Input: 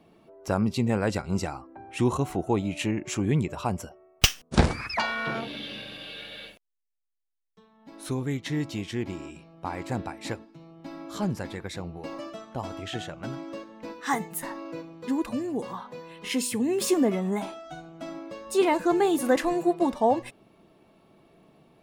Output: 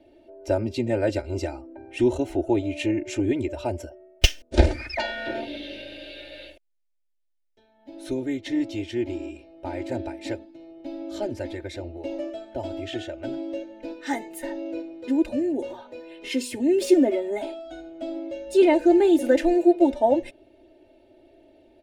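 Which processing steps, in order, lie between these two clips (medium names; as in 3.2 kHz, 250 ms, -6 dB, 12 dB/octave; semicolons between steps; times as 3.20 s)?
low-pass 2 kHz 6 dB/octave; static phaser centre 460 Hz, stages 4; comb 3.3 ms, depth 84%; trim +4.5 dB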